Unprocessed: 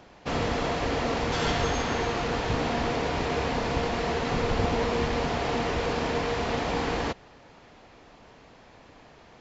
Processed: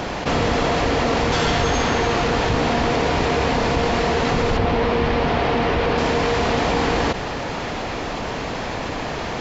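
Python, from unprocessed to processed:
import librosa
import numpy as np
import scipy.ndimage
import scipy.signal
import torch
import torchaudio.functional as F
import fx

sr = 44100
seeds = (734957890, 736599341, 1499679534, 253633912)

y = fx.lowpass(x, sr, hz=3900.0, slope=12, at=(4.57, 5.98))
y = fx.env_flatten(y, sr, amount_pct=70)
y = y * 10.0 ** (5.0 / 20.0)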